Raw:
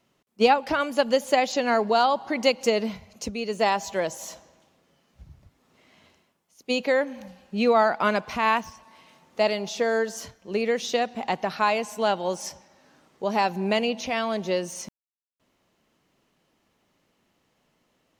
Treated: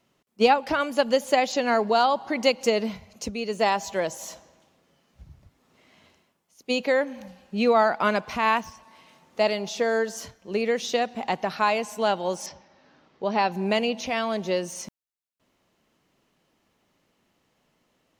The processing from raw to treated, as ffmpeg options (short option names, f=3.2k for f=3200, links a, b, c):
-filter_complex "[0:a]asettb=1/sr,asplit=3[a][b][c];[a]atrim=end=12.464[d];[b]atrim=start=12.46:end=13.52,asetpts=PTS-STARTPTS,afade=t=in:d=0.004:c=qsin,afade=t=out:st=1.056:d=0.004:c=qsin,lowpass=f=5.1k:w=0.5412,lowpass=f=5.1k:w=1.3066[e];[c]atrim=start=13.516[f];[d][e]acrossfade=d=0.004:c1=hsin:c2=qsin[g];[g][f]acrossfade=d=0.004:c1=qsin:c2=hsin"